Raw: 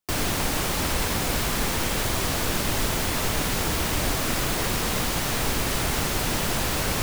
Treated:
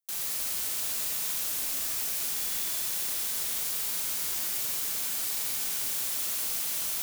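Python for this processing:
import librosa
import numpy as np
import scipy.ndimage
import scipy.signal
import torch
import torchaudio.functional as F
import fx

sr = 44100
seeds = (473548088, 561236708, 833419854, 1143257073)

y = F.preemphasis(torch.from_numpy(x), 0.97).numpy()
y = y * np.sin(2.0 * np.pi * 1500.0 * np.arange(len(y)) / sr)
y = fx.rev_schroeder(y, sr, rt60_s=2.9, comb_ms=29, drr_db=1.0)
y = y * librosa.db_to_amplitude(-2.0)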